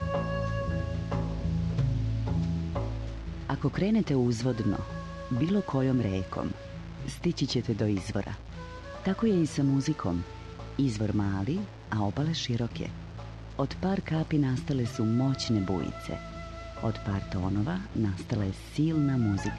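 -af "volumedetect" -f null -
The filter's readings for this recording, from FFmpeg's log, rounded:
mean_volume: -29.5 dB
max_volume: -16.0 dB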